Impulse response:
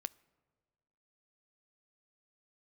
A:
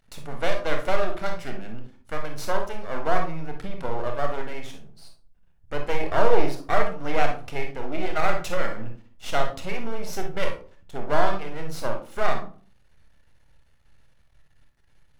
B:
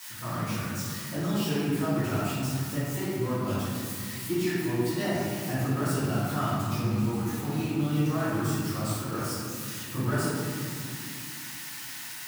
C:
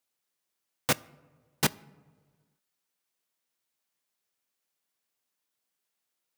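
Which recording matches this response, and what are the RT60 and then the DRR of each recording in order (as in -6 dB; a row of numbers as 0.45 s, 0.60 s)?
C; 0.40 s, 2.4 s, 1.5 s; 3.0 dB, -12.5 dB, 17.5 dB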